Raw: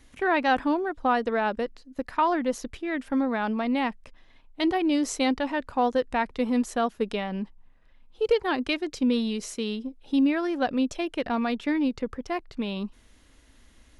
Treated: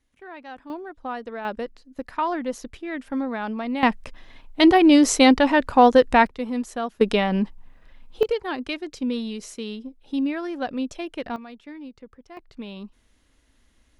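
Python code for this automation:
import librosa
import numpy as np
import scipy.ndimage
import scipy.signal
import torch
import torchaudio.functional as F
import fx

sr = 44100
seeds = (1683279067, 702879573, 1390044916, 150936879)

y = fx.gain(x, sr, db=fx.steps((0.0, -17.0), (0.7, -8.0), (1.45, -1.5), (3.83, 10.0), (6.27, -2.5), (7.01, 9.0), (8.23, -2.5), (11.36, -14.0), (12.37, -6.0)))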